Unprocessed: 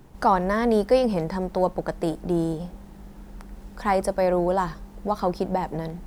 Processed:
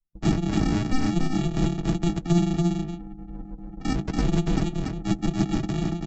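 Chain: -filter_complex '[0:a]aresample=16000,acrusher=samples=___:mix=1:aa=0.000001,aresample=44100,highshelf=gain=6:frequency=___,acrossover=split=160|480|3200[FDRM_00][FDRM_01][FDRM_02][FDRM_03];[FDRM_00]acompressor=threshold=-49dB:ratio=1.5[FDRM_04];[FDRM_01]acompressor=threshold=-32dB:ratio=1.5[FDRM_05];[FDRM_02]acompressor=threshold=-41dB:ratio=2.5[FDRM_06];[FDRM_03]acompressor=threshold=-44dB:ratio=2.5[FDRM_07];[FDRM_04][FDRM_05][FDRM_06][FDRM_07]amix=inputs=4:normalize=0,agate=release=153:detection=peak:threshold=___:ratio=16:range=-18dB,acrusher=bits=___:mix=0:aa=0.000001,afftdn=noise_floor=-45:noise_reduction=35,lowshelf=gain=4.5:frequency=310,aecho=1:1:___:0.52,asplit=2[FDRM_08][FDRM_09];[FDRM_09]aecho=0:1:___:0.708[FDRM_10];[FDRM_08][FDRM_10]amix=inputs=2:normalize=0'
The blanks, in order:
31, 2200, -45dB, 11, 6.1, 285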